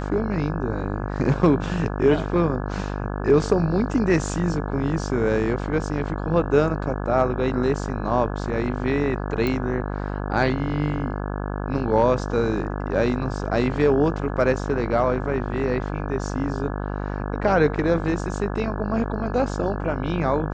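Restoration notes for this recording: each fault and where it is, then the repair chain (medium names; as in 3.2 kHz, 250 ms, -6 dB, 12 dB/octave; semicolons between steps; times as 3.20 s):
buzz 50 Hz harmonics 34 -28 dBFS
9.47 s: pop -13 dBFS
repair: de-click; de-hum 50 Hz, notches 34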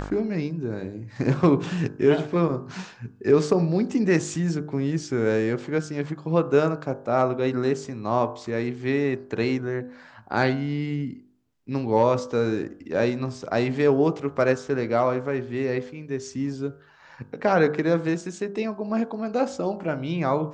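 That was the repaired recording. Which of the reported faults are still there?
nothing left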